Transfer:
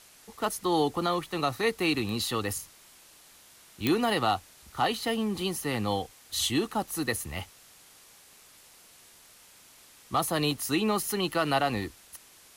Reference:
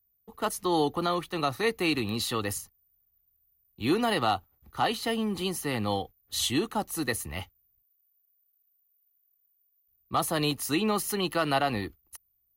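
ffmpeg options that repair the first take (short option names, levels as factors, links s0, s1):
-af "adeclick=t=4,afwtdn=0.0022"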